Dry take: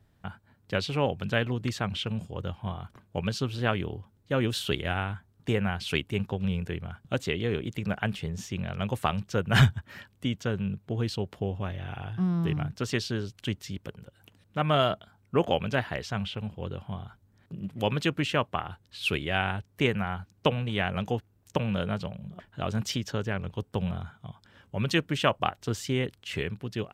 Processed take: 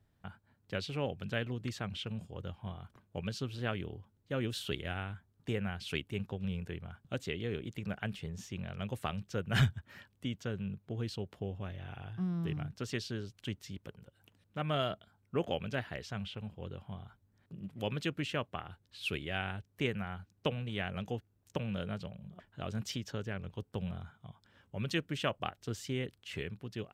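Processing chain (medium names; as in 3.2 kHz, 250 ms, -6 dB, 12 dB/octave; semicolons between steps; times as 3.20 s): dynamic bell 950 Hz, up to -5 dB, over -45 dBFS, Q 1.9; trim -8 dB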